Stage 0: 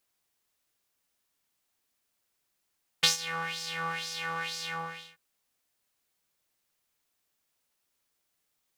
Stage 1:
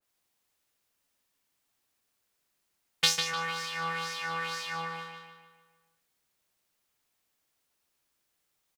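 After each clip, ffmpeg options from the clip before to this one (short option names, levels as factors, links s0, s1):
-filter_complex "[0:a]asplit=2[s0][s1];[s1]adelay=150,lowpass=f=4100:p=1,volume=0.631,asplit=2[s2][s3];[s3]adelay=150,lowpass=f=4100:p=1,volume=0.52,asplit=2[s4][s5];[s5]adelay=150,lowpass=f=4100:p=1,volume=0.52,asplit=2[s6][s7];[s7]adelay=150,lowpass=f=4100:p=1,volume=0.52,asplit=2[s8][s9];[s9]adelay=150,lowpass=f=4100:p=1,volume=0.52,asplit=2[s10][s11];[s11]adelay=150,lowpass=f=4100:p=1,volume=0.52,asplit=2[s12][s13];[s13]adelay=150,lowpass=f=4100:p=1,volume=0.52[s14];[s0][s2][s4][s6][s8][s10][s12][s14]amix=inputs=8:normalize=0,adynamicequalizer=threshold=0.00794:dfrequency=2100:dqfactor=0.7:tfrequency=2100:tqfactor=0.7:attack=5:release=100:ratio=0.375:range=1.5:mode=cutabove:tftype=highshelf"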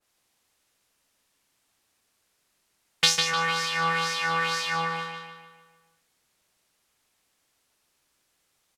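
-filter_complex "[0:a]lowpass=12000,asplit=2[s0][s1];[s1]alimiter=limit=0.15:level=0:latency=1:release=328,volume=1.12[s2];[s0][s2]amix=inputs=2:normalize=0,volume=1.19"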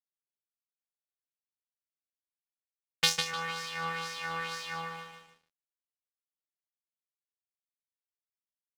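-af "aeval=exprs='sgn(val(0))*max(abs(val(0))-0.00631,0)':c=same,aeval=exprs='0.891*(cos(1*acos(clip(val(0)/0.891,-1,1)))-cos(1*PI/2))+0.0631*(cos(7*acos(clip(val(0)/0.891,-1,1)))-cos(7*PI/2))':c=same,volume=0.631"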